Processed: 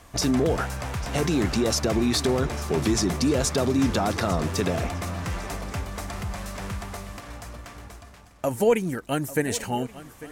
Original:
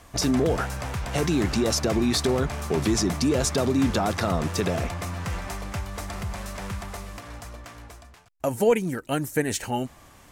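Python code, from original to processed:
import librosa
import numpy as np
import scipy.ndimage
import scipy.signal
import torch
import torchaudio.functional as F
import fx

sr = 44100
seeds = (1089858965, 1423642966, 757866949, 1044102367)

y = fx.echo_swing(x, sr, ms=1129, ratio=3, feedback_pct=34, wet_db=-17.0)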